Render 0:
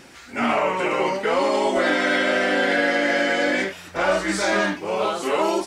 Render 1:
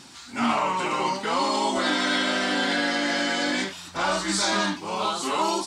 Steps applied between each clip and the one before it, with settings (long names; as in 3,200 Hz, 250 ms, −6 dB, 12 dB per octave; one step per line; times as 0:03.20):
octave-band graphic EQ 125/250/500/1,000/2,000/4,000/8,000 Hz +5/+6/−7/+9/−4/+11/+9 dB
level −6.5 dB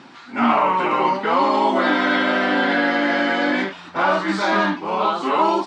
band-pass filter 190–2,100 Hz
level +7.5 dB